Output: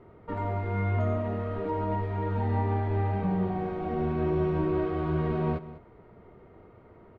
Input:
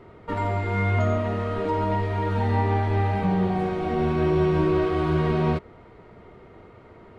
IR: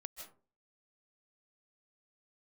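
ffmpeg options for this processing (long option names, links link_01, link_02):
-filter_complex "[0:a]lowpass=frequency=1300:poles=1,asplit=2[link_01][link_02];[link_02]aecho=0:1:195:0.158[link_03];[link_01][link_03]amix=inputs=2:normalize=0,volume=-4.5dB"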